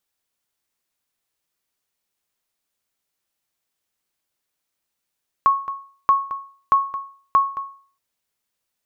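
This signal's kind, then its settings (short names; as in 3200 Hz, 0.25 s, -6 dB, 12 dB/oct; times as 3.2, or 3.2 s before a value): sonar ping 1100 Hz, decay 0.45 s, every 0.63 s, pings 4, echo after 0.22 s, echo -14 dB -8 dBFS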